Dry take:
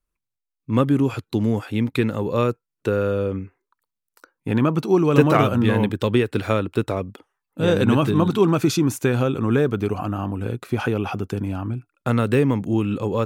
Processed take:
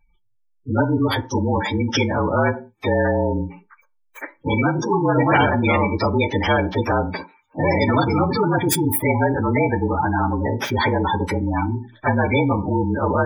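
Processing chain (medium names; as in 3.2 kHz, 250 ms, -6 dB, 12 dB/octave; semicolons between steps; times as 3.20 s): frequency axis rescaled in octaves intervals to 113%; 8.49–9.49 s: peaking EQ 6.1 kHz -9.5 dB 1.4 oct; in parallel at -6 dB: overload inside the chain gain 24 dB; on the sum: small resonant body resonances 890/2300 Hz, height 17 dB, ringing for 60 ms; spectral gate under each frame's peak -20 dB strong; on a send at -11 dB: reverberation RT60 0.25 s, pre-delay 3 ms; on the sum: spectrum-flattening compressor 2:1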